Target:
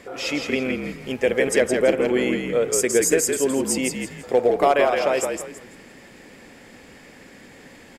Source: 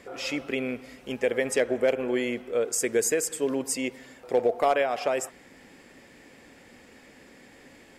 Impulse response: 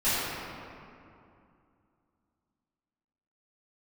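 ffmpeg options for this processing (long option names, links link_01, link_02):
-filter_complex "[0:a]asplit=5[link_01][link_02][link_03][link_04][link_05];[link_02]adelay=166,afreqshift=-51,volume=-5dB[link_06];[link_03]adelay=332,afreqshift=-102,volume=-15.5dB[link_07];[link_04]adelay=498,afreqshift=-153,volume=-25.9dB[link_08];[link_05]adelay=664,afreqshift=-204,volume=-36.4dB[link_09];[link_01][link_06][link_07][link_08][link_09]amix=inputs=5:normalize=0,volume=5dB"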